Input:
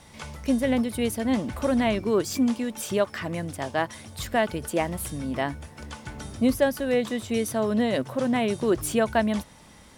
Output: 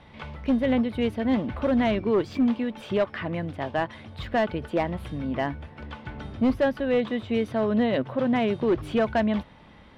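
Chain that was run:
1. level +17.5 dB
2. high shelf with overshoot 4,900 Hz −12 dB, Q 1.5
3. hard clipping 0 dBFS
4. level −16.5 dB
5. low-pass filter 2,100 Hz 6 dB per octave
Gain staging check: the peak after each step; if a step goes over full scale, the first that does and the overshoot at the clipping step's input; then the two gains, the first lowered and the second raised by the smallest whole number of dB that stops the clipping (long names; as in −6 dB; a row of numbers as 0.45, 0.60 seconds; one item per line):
+7.0, +8.0, 0.0, −16.5, −16.5 dBFS
step 1, 8.0 dB
step 1 +9.5 dB, step 4 −8.5 dB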